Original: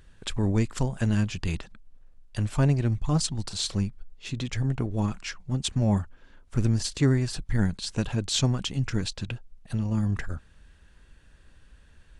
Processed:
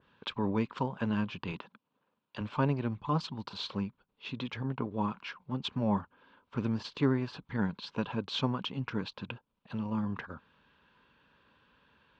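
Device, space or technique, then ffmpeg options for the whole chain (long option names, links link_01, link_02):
kitchen radio: -filter_complex "[0:a]highpass=230,equalizer=frequency=340:width_type=q:width=4:gain=-6,equalizer=frequency=690:width_type=q:width=4:gain=-7,equalizer=frequency=990:width_type=q:width=4:gain=8,equalizer=frequency=1900:width_type=q:width=4:gain=-8,lowpass=frequency=3600:width=0.5412,lowpass=frequency=3600:width=1.3066,asettb=1/sr,asplit=3[link_01][link_02][link_03];[link_01]atrim=end=1.524[link_04];[link_02]atrim=start=1.52:end=2.41,asetpts=PTS-STARTPTS,afade=type=in:duration=0.004:curve=qsin,afade=type=out:start_time=0.886:duration=0.004:curve=qsin,highpass=130[link_05];[link_03]atrim=start=2.406[link_06];[link_04][link_05]acrossfade=duration=0.004:curve1=hsin:curve2=qsin[link_07];[link_07][link_06]acrossfade=duration=0.004:curve1=qsin:curve2=hsin,adynamicequalizer=threshold=0.00282:dfrequency=2100:dqfactor=0.7:tfrequency=2100:tqfactor=0.7:attack=5:release=100:ratio=0.375:range=2:mode=cutabove:tftype=highshelf"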